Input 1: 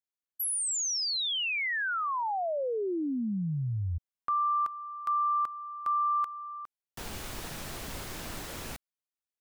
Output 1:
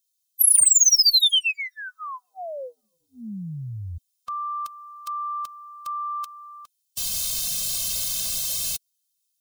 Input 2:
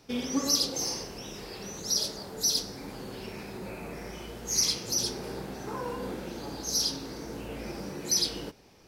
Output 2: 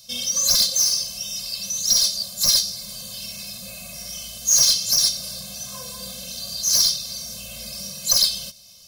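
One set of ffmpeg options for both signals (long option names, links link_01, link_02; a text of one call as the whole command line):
ffmpeg -i in.wav -af "aexciter=amount=8.2:drive=7.9:freq=2800,acontrast=74,afftfilt=real='re*eq(mod(floor(b*sr/1024/250),2),0)':imag='im*eq(mod(floor(b*sr/1024/250),2),0)':win_size=1024:overlap=0.75,volume=-8.5dB" out.wav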